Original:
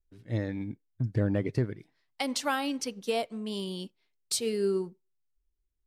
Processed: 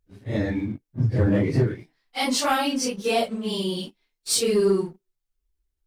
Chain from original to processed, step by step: phase scrambler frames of 0.1 s; sample leveller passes 1; gain +5 dB

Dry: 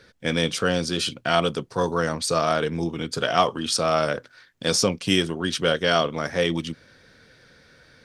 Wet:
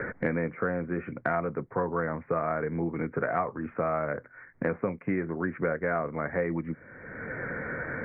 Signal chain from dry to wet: steep low-pass 2200 Hz 96 dB/oct; three-band squash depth 100%; gain -6.5 dB

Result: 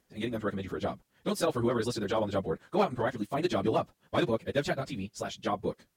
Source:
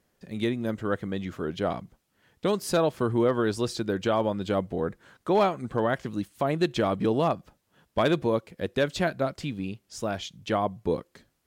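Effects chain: high shelf 3400 Hz +2.5 dB; plain phase-vocoder stretch 0.52×

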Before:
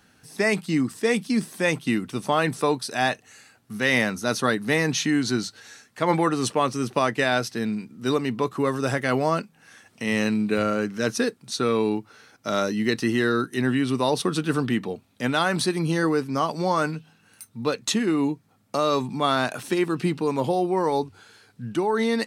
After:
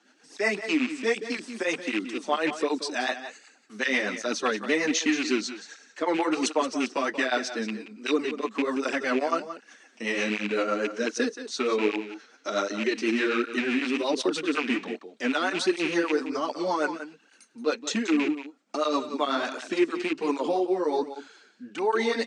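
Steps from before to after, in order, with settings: rattling part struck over -25 dBFS, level -17 dBFS; elliptic band-pass 270–7300 Hz, stop band 40 dB; in parallel at +2 dB: limiter -16 dBFS, peak gain reduction 7 dB; on the sum: rotary speaker horn 8 Hz, later 1.2 Hz, at 19.4; on a send: echo 0.178 s -11.5 dB; on the sum: tape flanging out of phase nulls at 1.3 Hz, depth 7.7 ms; gain -3 dB

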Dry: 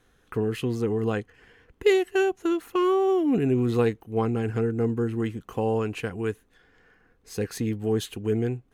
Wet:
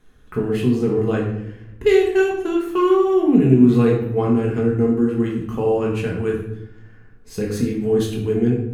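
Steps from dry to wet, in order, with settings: low shelf 260 Hz +8 dB; shoebox room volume 220 m³, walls mixed, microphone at 1.4 m; gain -1 dB

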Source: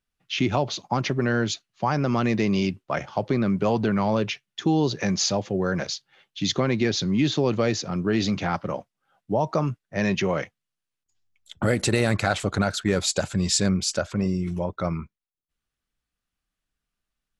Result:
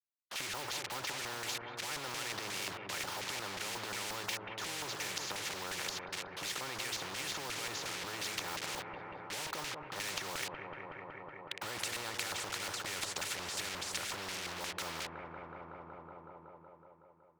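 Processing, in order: comb 2.2 ms, depth 91%; AGC gain up to 13 dB; transient shaper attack -5 dB, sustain +11 dB; compressor 2.5:1, threshold -19 dBFS, peak gain reduction 10 dB; bit-crush 5-bit; LFO band-pass square 2.8 Hz 990–2200 Hz; companded quantiser 8-bit; dark delay 0.186 s, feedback 71%, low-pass 760 Hz, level -9 dB; spectral compressor 4:1; gain -8.5 dB

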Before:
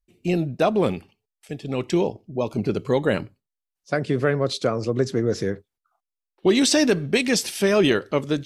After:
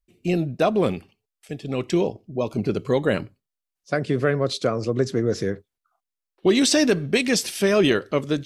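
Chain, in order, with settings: notch 870 Hz, Q 12

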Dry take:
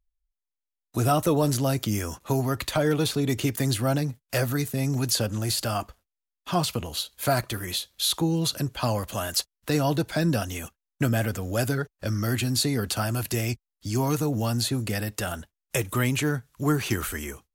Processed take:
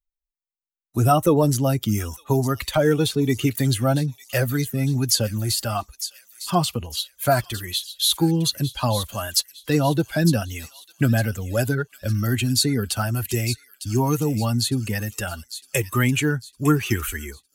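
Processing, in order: per-bin expansion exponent 1.5; on a send: thin delay 0.906 s, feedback 39%, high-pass 3300 Hz, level -9 dB; on the sum: gain +7 dB

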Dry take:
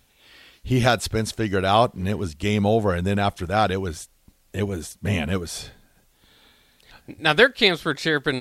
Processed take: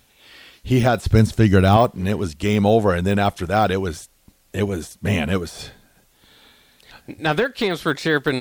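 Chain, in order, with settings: de-esser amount 80%; 1.06–1.77 tone controls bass +11 dB, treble +3 dB; 7.34–7.76 compressor, threshold -20 dBFS, peak gain reduction 6.5 dB; low shelf 76 Hz -6 dB; gain +4.5 dB

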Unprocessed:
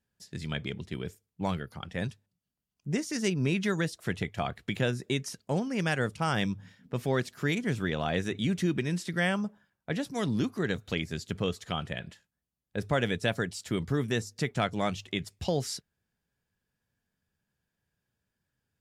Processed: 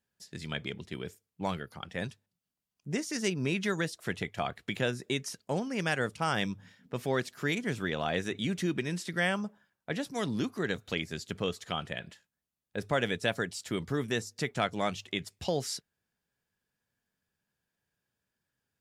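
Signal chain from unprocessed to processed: low shelf 180 Hz -8.5 dB

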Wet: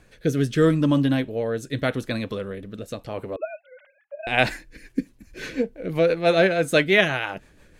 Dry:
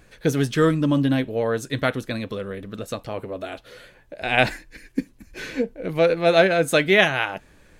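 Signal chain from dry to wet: 3.36–4.27 sine-wave speech; rotary speaker horn 0.8 Hz, later 6 Hz, at 4.31; gain +1 dB

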